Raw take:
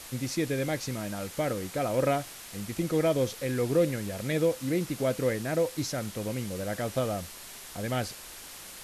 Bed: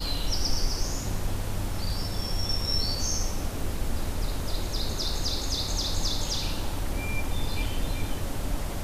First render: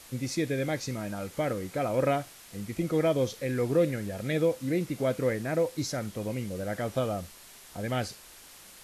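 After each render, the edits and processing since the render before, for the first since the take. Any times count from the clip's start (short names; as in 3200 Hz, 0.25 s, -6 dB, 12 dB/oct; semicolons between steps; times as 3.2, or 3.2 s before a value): noise print and reduce 6 dB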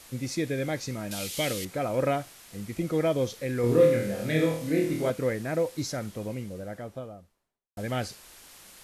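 1.11–1.65 resonant high shelf 2100 Hz +13.5 dB, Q 1.5; 3.61–5.1 flutter echo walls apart 4.3 m, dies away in 0.57 s; 5.86–7.77 studio fade out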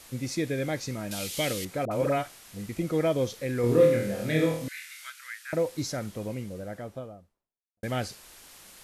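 1.85–2.69 dispersion highs, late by 60 ms, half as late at 660 Hz; 4.68–5.53 elliptic high-pass 1400 Hz, stop band 80 dB; 6.89–7.83 studio fade out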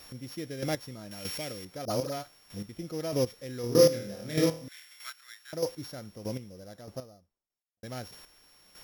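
sample sorter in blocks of 8 samples; chopper 1.6 Hz, depth 65%, duty 20%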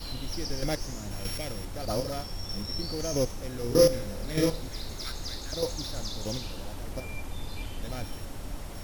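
add bed -8 dB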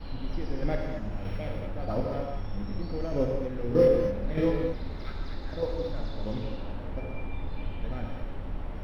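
air absorption 470 m; non-linear reverb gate 0.26 s flat, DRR 0.5 dB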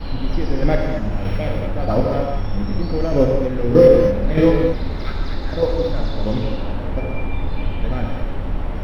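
gain +12 dB; limiter -1 dBFS, peak gain reduction 3 dB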